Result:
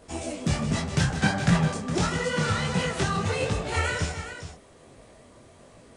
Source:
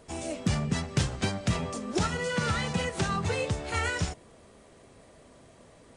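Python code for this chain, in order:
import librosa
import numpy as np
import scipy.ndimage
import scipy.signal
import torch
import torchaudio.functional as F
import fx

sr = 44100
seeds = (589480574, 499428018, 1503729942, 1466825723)

p1 = fx.graphic_eq_31(x, sr, hz=(160, 800, 1600), db=(12, 7, 11), at=(1.0, 1.65))
p2 = p1 + fx.echo_multitap(p1, sr, ms=(157, 412), db=(-11.5, -11.5), dry=0)
p3 = fx.detune_double(p2, sr, cents=48)
y = p3 * librosa.db_to_amplitude(6.0)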